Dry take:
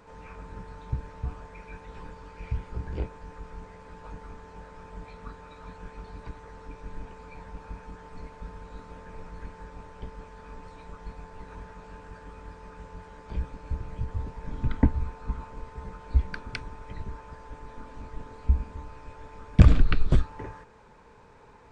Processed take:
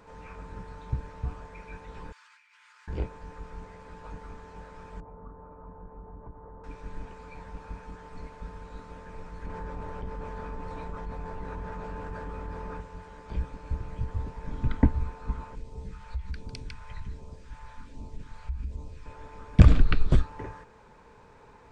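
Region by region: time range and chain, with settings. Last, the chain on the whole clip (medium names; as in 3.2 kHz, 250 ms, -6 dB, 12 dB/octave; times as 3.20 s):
2.12–2.88 s: high-pass 1.4 kHz 24 dB/octave + compressor with a negative ratio -59 dBFS
5.00–6.64 s: low-pass 1.1 kHz 24 dB/octave + compression 2:1, threshold -42 dBFS
9.46–12.81 s: treble shelf 2.3 kHz -10 dB + level flattener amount 70%
15.55–19.06 s: delay 151 ms -9.5 dB + compression 3:1, threshold -31 dBFS + phase shifter stages 2, 1.3 Hz, lowest notch 290–1600 Hz
whole clip: none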